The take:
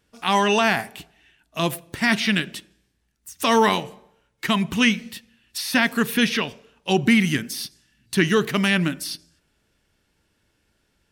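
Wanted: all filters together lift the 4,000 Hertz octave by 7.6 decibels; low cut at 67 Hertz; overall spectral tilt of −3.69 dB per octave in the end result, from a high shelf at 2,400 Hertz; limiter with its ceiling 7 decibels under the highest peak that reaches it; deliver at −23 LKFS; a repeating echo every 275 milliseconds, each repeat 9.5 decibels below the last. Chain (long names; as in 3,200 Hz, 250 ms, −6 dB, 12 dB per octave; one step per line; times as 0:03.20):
high-pass filter 67 Hz
high-shelf EQ 2,400 Hz +6.5 dB
parametric band 4,000 Hz +4.5 dB
brickwall limiter −6.5 dBFS
repeating echo 275 ms, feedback 33%, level −9.5 dB
level −3 dB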